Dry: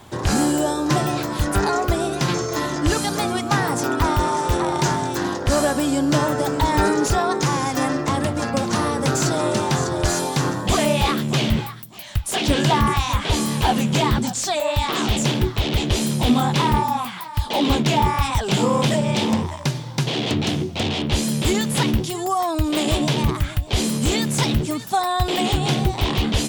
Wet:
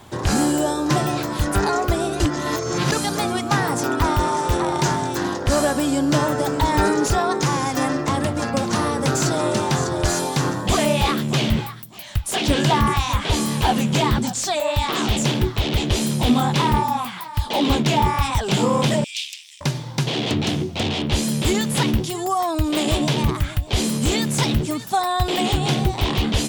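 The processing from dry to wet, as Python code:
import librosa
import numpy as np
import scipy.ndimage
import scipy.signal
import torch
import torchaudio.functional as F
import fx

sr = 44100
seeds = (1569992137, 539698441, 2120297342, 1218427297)

y = fx.ellip_highpass(x, sr, hz=2500.0, order=4, stop_db=80, at=(19.04, 19.61))
y = fx.edit(y, sr, fx.reverse_span(start_s=2.2, length_s=0.72), tone=tone)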